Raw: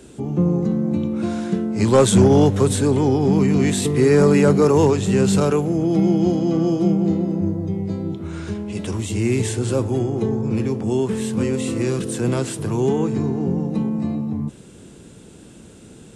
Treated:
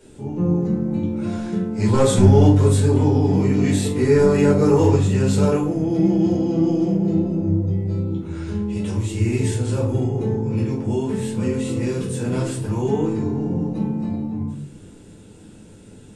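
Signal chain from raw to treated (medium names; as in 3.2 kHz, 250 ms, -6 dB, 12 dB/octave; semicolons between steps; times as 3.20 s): simulated room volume 330 m³, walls furnished, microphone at 4.6 m; trim -10.5 dB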